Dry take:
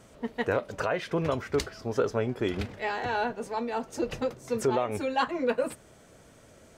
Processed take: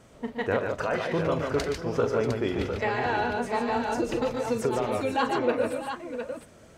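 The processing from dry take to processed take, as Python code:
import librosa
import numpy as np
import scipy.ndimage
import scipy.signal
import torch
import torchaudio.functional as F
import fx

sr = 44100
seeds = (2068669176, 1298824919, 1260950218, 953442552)

y = fx.high_shelf(x, sr, hz=5600.0, db=-4.5)
y = fx.echo_multitap(y, sr, ms=(41, 120, 146, 640, 706), db=(-10.5, -10.0, -4.5, -15.5, -7.5))
y = fx.band_squash(y, sr, depth_pct=100, at=(2.82, 5.17))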